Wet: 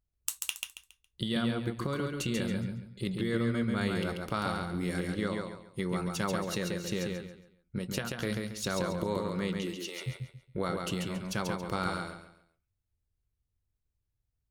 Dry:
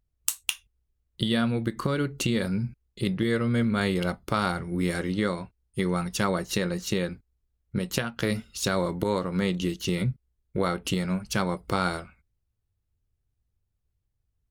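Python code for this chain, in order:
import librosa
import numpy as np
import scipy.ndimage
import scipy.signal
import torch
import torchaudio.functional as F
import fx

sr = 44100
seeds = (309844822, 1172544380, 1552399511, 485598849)

y = fx.highpass(x, sr, hz=fx.line((9.61, 260.0), (10.06, 660.0)), slope=24, at=(9.61, 10.06), fade=0.02)
y = fx.echo_feedback(y, sr, ms=138, feedback_pct=30, wet_db=-4)
y = y * 10.0 ** (-7.0 / 20.0)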